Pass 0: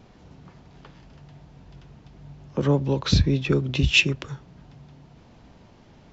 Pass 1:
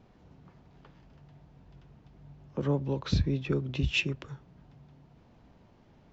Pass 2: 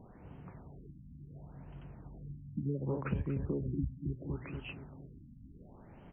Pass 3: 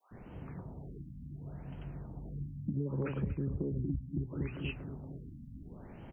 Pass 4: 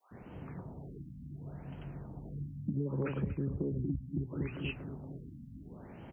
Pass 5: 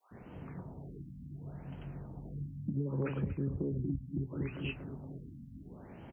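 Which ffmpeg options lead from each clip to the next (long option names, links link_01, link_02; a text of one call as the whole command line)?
ffmpeg -i in.wav -af "highshelf=frequency=3200:gain=-7.5,volume=-7.5dB" out.wav
ffmpeg -i in.wav -filter_complex "[0:a]asplit=2[link_01][link_02];[link_02]aecho=0:1:236|472|708|944|1180:0.398|0.171|0.0736|0.0317|0.0136[link_03];[link_01][link_03]amix=inputs=2:normalize=0,acompressor=threshold=-35dB:ratio=10,afftfilt=real='re*lt(b*sr/1024,280*pow(3300/280,0.5+0.5*sin(2*PI*0.7*pts/sr)))':imag='im*lt(b*sr/1024,280*pow(3300/280,0.5+0.5*sin(2*PI*0.7*pts/sr)))':win_size=1024:overlap=0.75,volume=4.5dB" out.wav
ffmpeg -i in.wav -filter_complex "[0:a]adynamicequalizer=threshold=0.002:dfrequency=880:dqfactor=0.85:tfrequency=880:tqfactor=0.85:attack=5:release=100:ratio=0.375:range=2.5:mode=cutabove:tftype=bell,acrossover=split=1000[link_01][link_02];[link_01]adelay=110[link_03];[link_03][link_02]amix=inputs=2:normalize=0,acompressor=threshold=-37dB:ratio=4,volume=5.5dB" out.wav
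ffmpeg -i in.wav -af "highpass=frequency=88:poles=1,volume=1.5dB" out.wav
ffmpeg -i in.wav -filter_complex "[0:a]asplit=2[link_01][link_02];[link_02]adelay=22,volume=-13dB[link_03];[link_01][link_03]amix=inputs=2:normalize=0,volume=-1dB" out.wav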